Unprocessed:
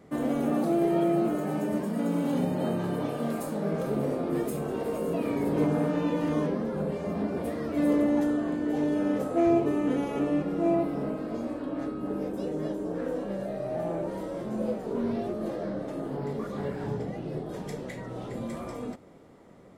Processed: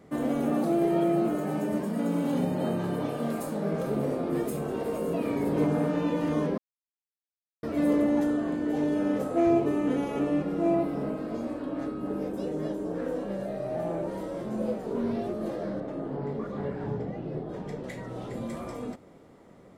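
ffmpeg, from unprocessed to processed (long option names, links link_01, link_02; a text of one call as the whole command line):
ffmpeg -i in.wav -filter_complex "[0:a]asettb=1/sr,asplit=3[link_01][link_02][link_03];[link_01]atrim=end=15.804[link_04];[link_02]atrim=start=15.8:end=17.84,asetpts=PTS-STARTPTS,afade=type=in:duration=0.004:curve=qsin,afade=type=out:start_time=2.036:duration=0.004:curve=qsin,aemphasis=mode=reproduction:type=75kf[link_05];[link_03]atrim=start=17.836[link_06];[link_04][link_05]acrossfade=duration=0.004:curve1=hsin:curve2=qsin[link_07];[link_07][link_06]acrossfade=duration=0.004:curve1=qsin:curve2=hsin,asplit=3[link_08][link_09][link_10];[link_08]atrim=end=6.58,asetpts=PTS-STARTPTS,afade=type=out:start_time=6.576:duration=0.004:curve=hsin[link_11];[link_09]atrim=start=6.58:end=7.63,asetpts=PTS-STARTPTS,volume=0[link_12];[link_10]atrim=start=7.63,asetpts=PTS-STARTPTS,afade=type=in:duration=0.004:curve=hsin[link_13];[link_11][link_12][link_13]concat=n=3:v=0:a=1" out.wav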